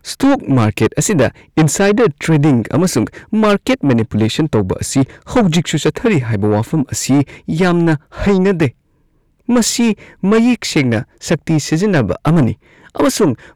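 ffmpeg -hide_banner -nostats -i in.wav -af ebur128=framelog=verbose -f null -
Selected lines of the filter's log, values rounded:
Integrated loudness:
  I:         -14.5 LUFS
  Threshold: -24.7 LUFS
Loudness range:
  LRA:         2.0 LU
  Threshold: -34.8 LUFS
  LRA low:   -15.6 LUFS
  LRA high:  -13.7 LUFS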